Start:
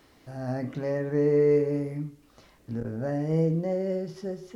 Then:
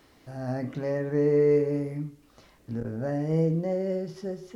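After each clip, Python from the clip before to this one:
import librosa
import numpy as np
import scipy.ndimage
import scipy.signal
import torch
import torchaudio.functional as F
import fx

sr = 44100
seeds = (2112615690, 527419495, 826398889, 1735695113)

y = x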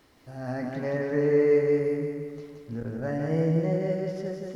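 y = fx.dynamic_eq(x, sr, hz=1800.0, q=0.81, threshold_db=-46.0, ratio=4.0, max_db=6)
y = fx.echo_feedback(y, sr, ms=173, feedback_pct=55, wet_db=-4)
y = y * librosa.db_to_amplitude(-2.0)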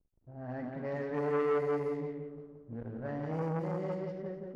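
y = fx.backlash(x, sr, play_db=-46.0)
y = fx.env_lowpass(y, sr, base_hz=610.0, full_db=-21.0)
y = fx.transformer_sat(y, sr, knee_hz=790.0)
y = y * librosa.db_to_amplitude(-6.5)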